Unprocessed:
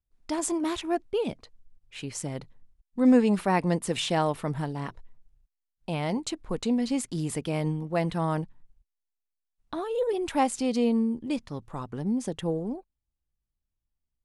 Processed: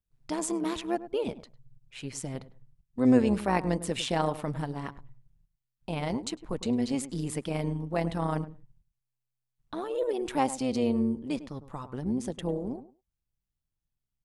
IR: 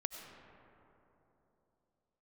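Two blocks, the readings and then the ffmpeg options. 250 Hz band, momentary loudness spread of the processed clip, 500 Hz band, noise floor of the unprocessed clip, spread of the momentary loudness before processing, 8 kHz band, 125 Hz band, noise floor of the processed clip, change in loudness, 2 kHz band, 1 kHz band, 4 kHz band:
-2.5 dB, 14 LU, -2.0 dB, -84 dBFS, 13 LU, -2.5 dB, -2.0 dB, -85 dBFS, -2.0 dB, -2.5 dB, -2.5 dB, -2.5 dB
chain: -filter_complex "[0:a]asplit=2[s0][s1];[s1]adelay=102,lowpass=f=1100:p=1,volume=0.224,asplit=2[s2][s3];[s3]adelay=102,lowpass=f=1100:p=1,volume=0.16[s4];[s0][s2][s4]amix=inputs=3:normalize=0,tremolo=f=130:d=0.571"

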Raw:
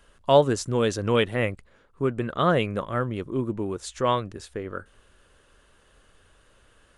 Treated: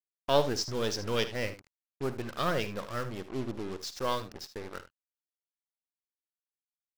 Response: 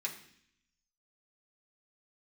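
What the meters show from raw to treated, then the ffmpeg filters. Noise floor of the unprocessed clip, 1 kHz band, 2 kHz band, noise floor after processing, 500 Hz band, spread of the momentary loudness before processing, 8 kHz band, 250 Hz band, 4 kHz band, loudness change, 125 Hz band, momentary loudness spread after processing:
-60 dBFS, -8.0 dB, -6.0 dB, under -85 dBFS, -8.5 dB, 15 LU, -3.0 dB, -9.5 dB, -2.0 dB, -8.0 dB, -10.0 dB, 15 LU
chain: -af "aeval=exprs='if(lt(val(0),0),0.447*val(0),val(0))':c=same,lowpass=f=5300:t=q:w=5.3,acrusher=bits=5:mix=0:aa=0.5,aecho=1:1:53|77:0.178|0.2,volume=0.501"

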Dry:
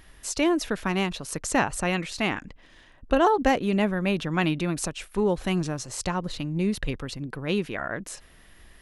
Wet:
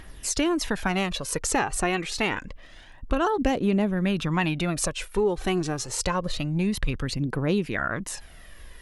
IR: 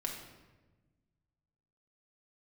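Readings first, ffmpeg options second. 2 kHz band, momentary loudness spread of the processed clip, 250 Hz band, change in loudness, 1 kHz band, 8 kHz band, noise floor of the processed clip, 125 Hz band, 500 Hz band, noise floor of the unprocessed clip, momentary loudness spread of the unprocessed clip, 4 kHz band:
+0.5 dB, 5 LU, 0.0 dB, 0.0 dB, -1.5 dB, +4.0 dB, -47 dBFS, +1.5 dB, -0.5 dB, -54 dBFS, 10 LU, +1.5 dB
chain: -af "aphaser=in_gain=1:out_gain=1:delay=2.8:decay=0.46:speed=0.27:type=triangular,acompressor=threshold=0.0562:ratio=3,volume=1.5"

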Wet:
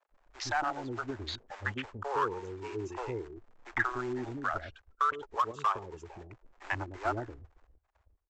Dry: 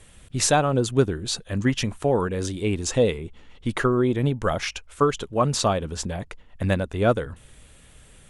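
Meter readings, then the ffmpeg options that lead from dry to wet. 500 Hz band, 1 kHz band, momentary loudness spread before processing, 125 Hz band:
-15.5 dB, -4.5 dB, 11 LU, -18.5 dB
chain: -filter_complex "[0:a]afftfilt=real='re*pow(10,11/40*sin(2*PI*(0.73*log(max(b,1)*sr/1024/100)/log(2)-(-0.3)*(pts-256)/sr)))':imag='im*pow(10,11/40*sin(2*PI*(0.73*log(max(b,1)*sr/1024/100)/log(2)-(-0.3)*(pts-256)/sr)))':win_size=1024:overlap=0.75,afftfilt=real='re*gte(hypot(re,im),0.0224)':imag='im*gte(hypot(re,im),0.0224)':win_size=1024:overlap=0.75,afwtdn=0.0398,firequalizer=gain_entry='entry(110,0);entry(160,-16);entry(350,-2);entry(510,-16);entry(860,2);entry(1300,4);entry(3700,2);entry(5900,-2)':delay=0.05:min_phase=1,aresample=16000,acrusher=bits=4:mode=log:mix=0:aa=0.000001,aresample=44100,alimiter=limit=0.188:level=0:latency=1:release=136,acrossover=split=380 2000:gain=0.178 1 0.2[s0][s1][s2];[s0][s1][s2]amix=inputs=3:normalize=0,acrossover=split=500[s3][s4];[s3]adelay=110[s5];[s5][s4]amix=inputs=2:normalize=0,acrossover=split=590|1000[s6][s7][s8];[s7]asoftclip=type=hard:threshold=0.0158[s9];[s6][s9][s8]amix=inputs=3:normalize=0"

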